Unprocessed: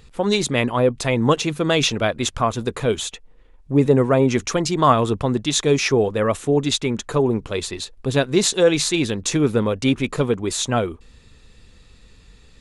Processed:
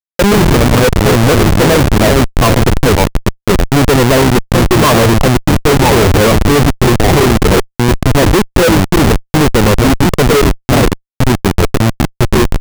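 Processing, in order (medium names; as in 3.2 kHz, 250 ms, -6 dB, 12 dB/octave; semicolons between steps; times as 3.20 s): graphic EQ 125/250/500/1000/4000/8000 Hz +9/+5/+6/+6/-4/+11 dB; ever faster or slower copies 87 ms, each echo -3 st, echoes 2, each echo -6 dB; LFO low-pass saw down 9.1 Hz 420–2300 Hz; Schmitt trigger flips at -11.5 dBFS; trim +2 dB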